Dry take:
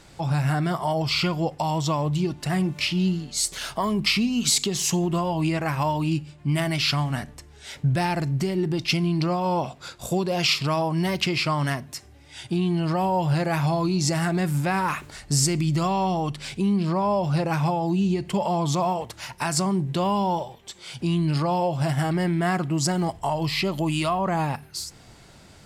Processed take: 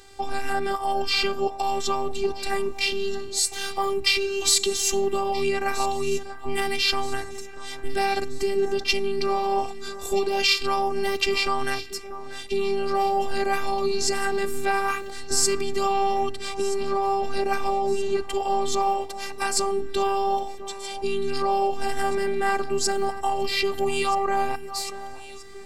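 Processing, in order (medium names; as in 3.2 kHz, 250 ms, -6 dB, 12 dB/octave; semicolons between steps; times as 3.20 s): robot voice 394 Hz; echo whose repeats swap between lows and highs 639 ms, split 1.7 kHz, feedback 67%, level -12.5 dB; trim +3.5 dB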